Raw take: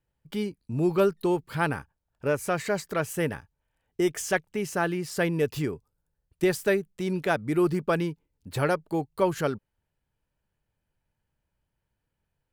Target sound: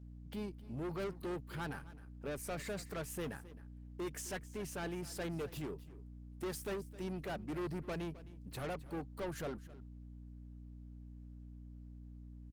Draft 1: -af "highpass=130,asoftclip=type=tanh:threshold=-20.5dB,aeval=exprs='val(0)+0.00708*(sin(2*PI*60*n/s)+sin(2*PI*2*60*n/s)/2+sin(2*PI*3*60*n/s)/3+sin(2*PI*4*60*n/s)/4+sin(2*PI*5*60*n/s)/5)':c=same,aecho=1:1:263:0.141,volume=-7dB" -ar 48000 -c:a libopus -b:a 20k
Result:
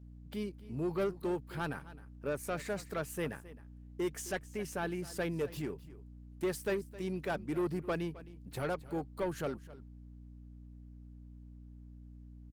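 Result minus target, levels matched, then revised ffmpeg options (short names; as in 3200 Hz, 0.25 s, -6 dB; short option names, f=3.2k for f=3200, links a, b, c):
soft clip: distortion -7 dB
-af "highpass=130,asoftclip=type=tanh:threshold=-30dB,aeval=exprs='val(0)+0.00708*(sin(2*PI*60*n/s)+sin(2*PI*2*60*n/s)/2+sin(2*PI*3*60*n/s)/3+sin(2*PI*4*60*n/s)/4+sin(2*PI*5*60*n/s)/5)':c=same,aecho=1:1:263:0.141,volume=-7dB" -ar 48000 -c:a libopus -b:a 20k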